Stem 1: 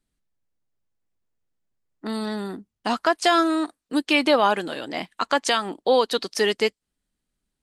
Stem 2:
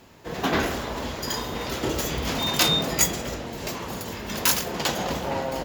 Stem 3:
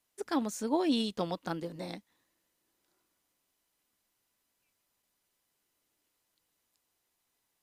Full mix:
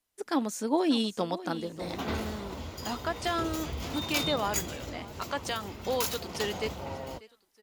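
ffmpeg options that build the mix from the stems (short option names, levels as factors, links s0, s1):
-filter_complex "[0:a]volume=0.119,asplit=2[s0][s1];[s1]volume=0.106[s2];[1:a]bandreject=f=1700:w=6.6,adelay=1550,volume=0.133[s3];[2:a]highpass=180,volume=0.668,asplit=2[s4][s5];[s5]volume=0.178[s6];[s2][s6]amix=inputs=2:normalize=0,aecho=0:1:591|1182|1773|2364|2955:1|0.36|0.13|0.0467|0.0168[s7];[s0][s3][s4][s7]amix=inputs=4:normalize=0,equalizer=f=83:t=o:w=0.71:g=11,dynaudnorm=f=130:g=3:m=2.11"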